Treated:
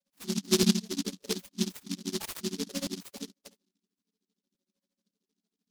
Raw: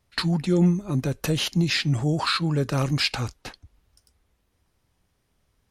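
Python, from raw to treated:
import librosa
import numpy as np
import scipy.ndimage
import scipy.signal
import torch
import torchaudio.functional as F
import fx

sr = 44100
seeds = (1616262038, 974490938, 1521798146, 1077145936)

y = fx.chord_vocoder(x, sr, chord='minor triad', root=54)
y = fx.spec_topn(y, sr, count=8)
y = fx.peak_eq(y, sr, hz=510.0, db=-13.5, octaves=0.51, at=(1.45, 2.69))
y = y * (1.0 - 0.92 / 2.0 + 0.92 / 2.0 * np.cos(2.0 * np.pi * 13.0 * (np.arange(len(y)) / sr)))
y = fx.cabinet(y, sr, low_hz=210.0, low_slope=12, high_hz=5300.0, hz=(260.0, 400.0, 660.0, 950.0), db=(-4, 8, 7, 5))
y = fx.buffer_crackle(y, sr, first_s=0.62, period_s=0.56, block=256, kind='repeat')
y = fx.noise_mod_delay(y, sr, seeds[0], noise_hz=4600.0, depth_ms=0.29)
y = y * 10.0 ** (-1.0 / 20.0)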